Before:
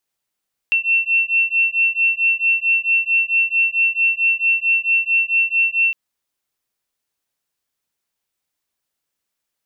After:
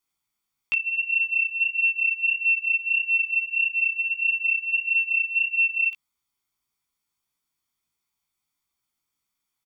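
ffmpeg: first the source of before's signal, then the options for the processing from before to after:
-f lavfi -i "aevalsrc='0.133*(sin(2*PI*2700*t)+sin(2*PI*2704.5*t))':d=5.21:s=44100"
-af "aecho=1:1:0.9:0.61,flanger=delay=15.5:depth=2.5:speed=1.6"

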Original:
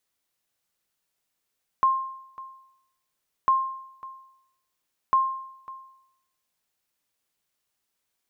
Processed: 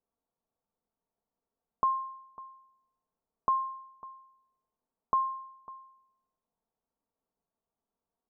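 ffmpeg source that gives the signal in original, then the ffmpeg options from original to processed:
-f lavfi -i "aevalsrc='0.2*(sin(2*PI*1060*mod(t,1.65))*exp(-6.91*mod(t,1.65)/0.78)+0.1*sin(2*PI*1060*max(mod(t,1.65)-0.55,0))*exp(-6.91*max(mod(t,1.65)-0.55,0)/0.78))':d=4.95:s=44100"
-af "lowpass=f=1k:w=0.5412,lowpass=f=1k:w=1.3066,aecho=1:1:4.4:0.45"

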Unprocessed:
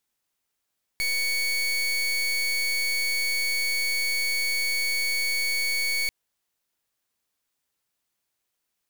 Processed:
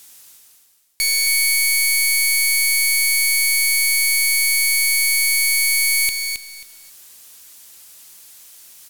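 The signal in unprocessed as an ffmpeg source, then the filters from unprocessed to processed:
-f lavfi -i "aevalsrc='0.0531*(2*lt(mod(2230*t,1),0.28)-1)':d=5.09:s=44100"
-af "equalizer=f=11k:t=o:w=2.7:g=14,areverse,acompressor=mode=upward:threshold=-25dB:ratio=2.5,areverse,aecho=1:1:269|538|807:0.501|0.105|0.0221"

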